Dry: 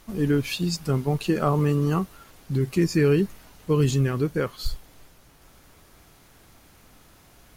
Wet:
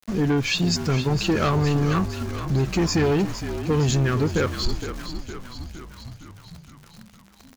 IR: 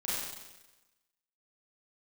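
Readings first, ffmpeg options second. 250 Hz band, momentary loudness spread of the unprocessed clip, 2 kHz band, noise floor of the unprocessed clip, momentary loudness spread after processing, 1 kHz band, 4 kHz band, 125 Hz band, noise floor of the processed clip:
+1.0 dB, 9 LU, +5.5 dB, −55 dBFS, 17 LU, +3.5 dB, +7.0 dB, +1.5 dB, −51 dBFS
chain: -filter_complex "[0:a]equalizer=frequency=1600:width=2:gain=4,asoftclip=type=tanh:threshold=-21dB,aresample=16000,aresample=44100,highshelf=frequency=4700:gain=3.5,bandreject=frequency=50:width_type=h:width=6,bandreject=frequency=100:width_type=h:width=6,acompressor=threshold=-25dB:ratio=6,aeval=exprs='val(0)*gte(abs(val(0)),0.00562)':channel_layout=same,asplit=9[link_01][link_02][link_03][link_04][link_05][link_06][link_07][link_08][link_09];[link_02]adelay=462,afreqshift=-47,volume=-10dB[link_10];[link_03]adelay=924,afreqshift=-94,volume=-14.2dB[link_11];[link_04]adelay=1386,afreqshift=-141,volume=-18.3dB[link_12];[link_05]adelay=1848,afreqshift=-188,volume=-22.5dB[link_13];[link_06]adelay=2310,afreqshift=-235,volume=-26.6dB[link_14];[link_07]adelay=2772,afreqshift=-282,volume=-30.8dB[link_15];[link_08]adelay=3234,afreqshift=-329,volume=-34.9dB[link_16];[link_09]adelay=3696,afreqshift=-376,volume=-39.1dB[link_17];[link_01][link_10][link_11][link_12][link_13][link_14][link_15][link_16][link_17]amix=inputs=9:normalize=0,volume=7dB"

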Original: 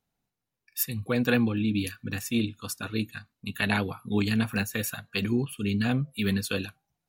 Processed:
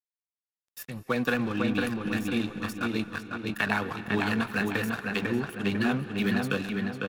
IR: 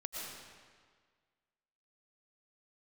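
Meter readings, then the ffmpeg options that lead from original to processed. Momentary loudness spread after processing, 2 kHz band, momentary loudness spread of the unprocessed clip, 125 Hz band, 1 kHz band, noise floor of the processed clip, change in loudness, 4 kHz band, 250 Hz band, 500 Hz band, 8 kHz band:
7 LU, +2.5 dB, 9 LU, −4.0 dB, +4.5 dB, below −85 dBFS, −0.5 dB, −2.5 dB, −0.5 dB, +1.0 dB, −9.5 dB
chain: -filter_complex "[0:a]highpass=frequency=82:width=0.5412,highpass=frequency=82:width=1.3066,equalizer=frequency=1200:width=0.96:gain=7,acrossover=split=150|2500[link_01][link_02][link_03];[link_01]acompressor=threshold=-44dB:ratio=4[link_04];[link_02]acompressor=threshold=-24dB:ratio=4[link_05];[link_03]acompressor=threshold=-40dB:ratio=4[link_06];[link_04][link_05][link_06]amix=inputs=3:normalize=0,aeval=exprs='sgn(val(0))*max(abs(val(0))-0.00794,0)':channel_layout=same,asplit=2[link_07][link_08];[link_08]adelay=501,lowpass=frequency=2900:poles=1,volume=-3dB,asplit=2[link_09][link_10];[link_10]adelay=501,lowpass=frequency=2900:poles=1,volume=0.4,asplit=2[link_11][link_12];[link_12]adelay=501,lowpass=frequency=2900:poles=1,volume=0.4,asplit=2[link_13][link_14];[link_14]adelay=501,lowpass=frequency=2900:poles=1,volume=0.4,asplit=2[link_15][link_16];[link_16]adelay=501,lowpass=frequency=2900:poles=1,volume=0.4[link_17];[link_07][link_09][link_11][link_13][link_15][link_17]amix=inputs=6:normalize=0,asplit=2[link_18][link_19];[1:a]atrim=start_sample=2205,asetrate=27342,aresample=44100[link_20];[link_19][link_20]afir=irnorm=-1:irlink=0,volume=-16dB[link_21];[link_18][link_21]amix=inputs=2:normalize=0"

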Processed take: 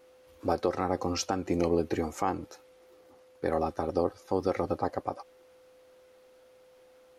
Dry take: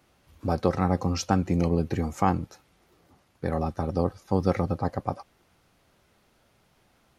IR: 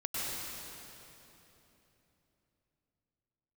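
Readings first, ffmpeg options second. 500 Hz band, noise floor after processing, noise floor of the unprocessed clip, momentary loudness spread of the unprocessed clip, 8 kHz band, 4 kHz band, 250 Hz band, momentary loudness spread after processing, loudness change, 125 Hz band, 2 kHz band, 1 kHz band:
−0.5 dB, −59 dBFS, −65 dBFS, 9 LU, 0.0 dB, −0.5 dB, −5.0 dB, 9 LU, −3.5 dB, −12.0 dB, −2.5 dB, −2.5 dB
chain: -af "lowshelf=frequency=240:width_type=q:width=1.5:gain=-9,alimiter=limit=-14.5dB:level=0:latency=1:release=186,aeval=exprs='val(0)+0.00158*sin(2*PI*510*n/s)':channel_layout=same"

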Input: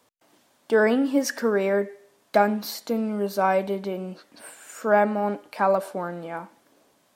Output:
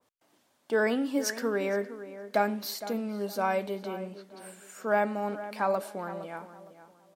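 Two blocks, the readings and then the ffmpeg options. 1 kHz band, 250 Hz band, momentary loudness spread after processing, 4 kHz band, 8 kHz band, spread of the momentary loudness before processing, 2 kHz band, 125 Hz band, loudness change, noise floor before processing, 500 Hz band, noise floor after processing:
−6.5 dB, −7.0 dB, 15 LU, −2.5 dB, −2.5 dB, 15 LU, −5.0 dB, can't be measured, −6.5 dB, −65 dBFS, −6.5 dB, −71 dBFS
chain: -filter_complex "[0:a]asplit=2[link_01][link_02];[link_02]adelay=463,lowpass=frequency=2200:poles=1,volume=-13dB,asplit=2[link_03][link_04];[link_04]adelay=463,lowpass=frequency=2200:poles=1,volume=0.29,asplit=2[link_05][link_06];[link_06]adelay=463,lowpass=frequency=2200:poles=1,volume=0.29[link_07];[link_03][link_05][link_07]amix=inputs=3:normalize=0[link_08];[link_01][link_08]amix=inputs=2:normalize=0,adynamicequalizer=threshold=0.0158:dfrequency=1800:dqfactor=0.7:tfrequency=1800:tqfactor=0.7:attack=5:release=100:ratio=0.375:range=2.5:mode=boostabove:tftype=highshelf,volume=-7dB"

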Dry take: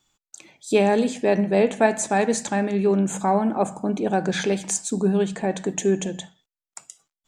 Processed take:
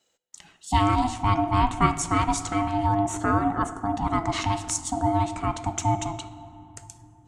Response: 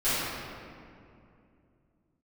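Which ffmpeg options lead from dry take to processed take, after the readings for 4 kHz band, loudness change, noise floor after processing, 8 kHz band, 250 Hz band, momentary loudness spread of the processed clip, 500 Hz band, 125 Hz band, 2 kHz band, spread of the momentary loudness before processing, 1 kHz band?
−0.5 dB, −2.5 dB, −62 dBFS, −3.0 dB, −4.5 dB, 17 LU, −10.5 dB, +3.0 dB, −4.0 dB, 6 LU, +3.5 dB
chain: -filter_complex "[0:a]aeval=exprs='val(0)*sin(2*PI*500*n/s)':channel_layout=same,asplit=2[link_01][link_02];[1:a]atrim=start_sample=2205,asetrate=29547,aresample=44100[link_03];[link_02][link_03]afir=irnorm=-1:irlink=0,volume=-30dB[link_04];[link_01][link_04]amix=inputs=2:normalize=0"

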